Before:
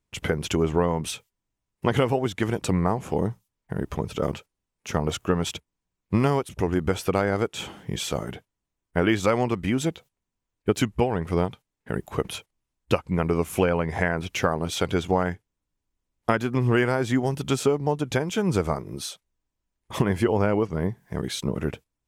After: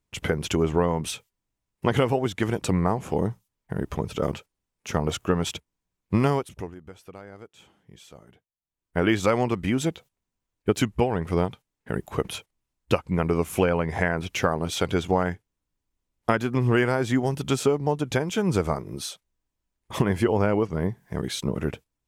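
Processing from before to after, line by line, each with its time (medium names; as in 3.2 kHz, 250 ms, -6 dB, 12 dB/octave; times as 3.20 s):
6.30–9.06 s: dip -20 dB, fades 0.45 s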